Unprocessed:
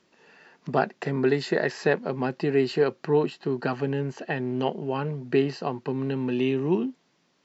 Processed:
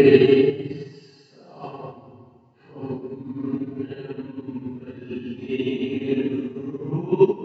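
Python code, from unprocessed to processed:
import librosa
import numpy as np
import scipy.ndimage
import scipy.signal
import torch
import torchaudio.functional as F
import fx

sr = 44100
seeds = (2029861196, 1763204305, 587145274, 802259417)

p1 = x + 0.48 * np.pad(x, (int(7.4 * sr / 1000.0), 0))[:len(x)]
p2 = p1 + fx.room_flutter(p1, sr, wall_m=7.1, rt60_s=0.33, dry=0)
p3 = fx.paulstretch(p2, sr, seeds[0], factor=5.2, window_s=0.05, from_s=5.35)
p4 = fx.upward_expand(p3, sr, threshold_db=-28.0, expansion=2.5)
y = p4 * 10.0 ** (6.0 / 20.0)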